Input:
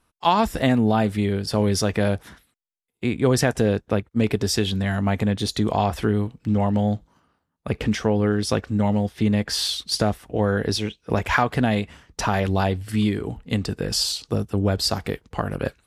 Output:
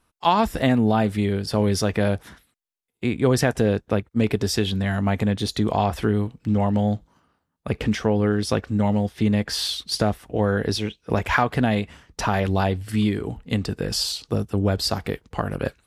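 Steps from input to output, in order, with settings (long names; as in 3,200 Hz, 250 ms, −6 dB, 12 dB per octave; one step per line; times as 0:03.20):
dynamic equaliser 7,300 Hz, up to −3 dB, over −40 dBFS, Q 0.9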